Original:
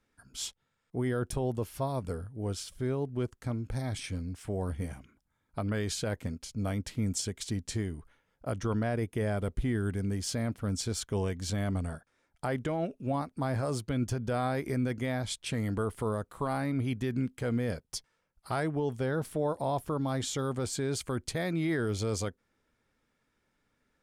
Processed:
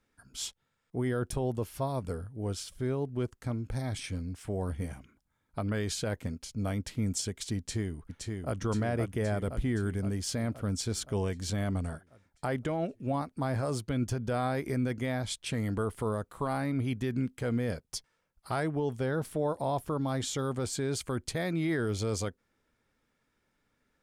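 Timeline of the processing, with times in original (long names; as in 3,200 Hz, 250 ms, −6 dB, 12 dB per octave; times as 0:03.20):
0:07.57–0:08.60: delay throw 520 ms, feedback 65%, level −4 dB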